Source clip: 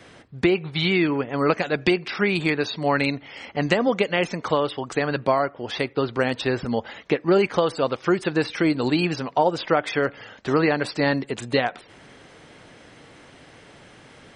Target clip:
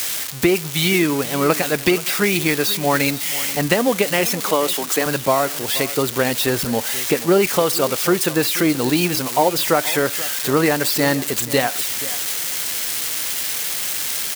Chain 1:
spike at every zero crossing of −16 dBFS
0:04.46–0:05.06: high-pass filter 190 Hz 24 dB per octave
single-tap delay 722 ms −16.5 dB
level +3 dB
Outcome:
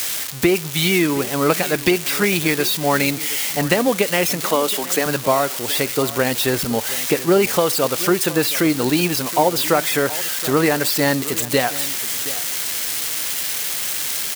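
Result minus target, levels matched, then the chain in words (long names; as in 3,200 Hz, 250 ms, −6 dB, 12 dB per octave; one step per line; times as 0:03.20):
echo 242 ms late
spike at every zero crossing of −16 dBFS
0:04.46–0:05.06: high-pass filter 190 Hz 24 dB per octave
single-tap delay 480 ms −16.5 dB
level +3 dB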